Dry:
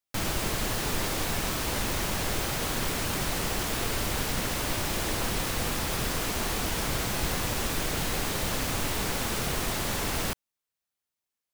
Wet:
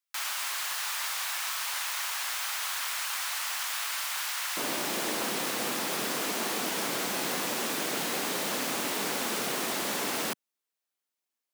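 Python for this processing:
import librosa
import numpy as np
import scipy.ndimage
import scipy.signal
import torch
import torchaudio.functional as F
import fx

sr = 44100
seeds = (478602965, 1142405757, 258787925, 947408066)

y = fx.highpass(x, sr, hz=fx.steps((0.0, 970.0), (4.57, 210.0)), slope=24)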